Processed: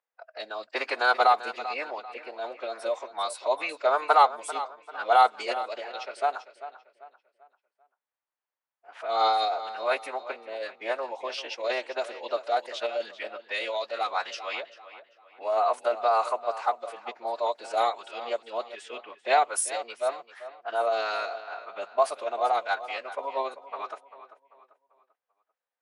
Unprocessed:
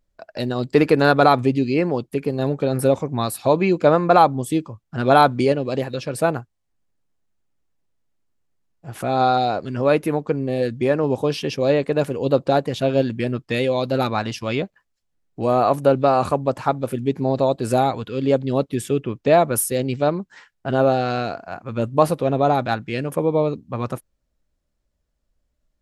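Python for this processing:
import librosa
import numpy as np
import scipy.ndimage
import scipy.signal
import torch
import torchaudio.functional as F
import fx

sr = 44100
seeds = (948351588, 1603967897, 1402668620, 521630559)

p1 = scipy.signal.sosfilt(scipy.signal.butter(4, 660.0, 'highpass', fs=sr, output='sos'), x)
p2 = fx.pitch_keep_formants(p1, sr, semitones=-2.5)
p3 = scipy.signal.sosfilt(scipy.signal.butter(2, 11000.0, 'lowpass', fs=sr, output='sos'), p2)
p4 = p3 + fx.echo_feedback(p3, sr, ms=392, feedback_pct=37, wet_db=-14.0, dry=0)
p5 = fx.env_lowpass(p4, sr, base_hz=2300.0, full_db=-20.5)
y = p5 * 10.0 ** (-3.0 / 20.0)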